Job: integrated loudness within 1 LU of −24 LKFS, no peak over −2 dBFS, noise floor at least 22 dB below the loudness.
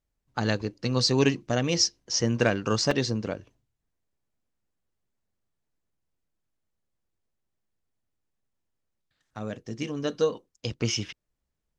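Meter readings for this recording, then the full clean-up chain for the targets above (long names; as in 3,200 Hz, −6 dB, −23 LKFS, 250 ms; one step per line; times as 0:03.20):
number of dropouts 1; longest dropout 2.9 ms; integrated loudness −27.0 LKFS; sample peak −7.0 dBFS; target loudness −24.0 LKFS
→ repair the gap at 0:02.91, 2.9 ms
level +3 dB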